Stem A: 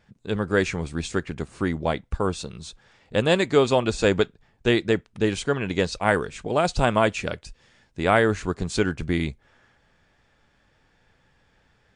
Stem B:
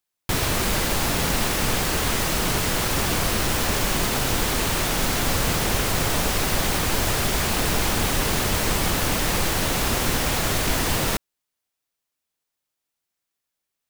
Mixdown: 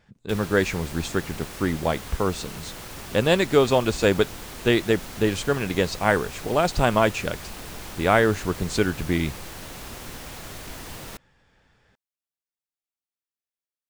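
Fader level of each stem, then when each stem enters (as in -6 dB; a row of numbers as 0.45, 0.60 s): +0.5, -15.5 dB; 0.00, 0.00 s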